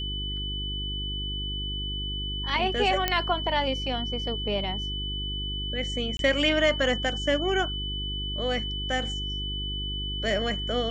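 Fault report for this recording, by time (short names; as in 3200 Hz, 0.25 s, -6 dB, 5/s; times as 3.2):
hum 50 Hz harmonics 8 -34 dBFS
tone 3000 Hz -32 dBFS
3.08 pop -8 dBFS
6.17–6.19 gap 22 ms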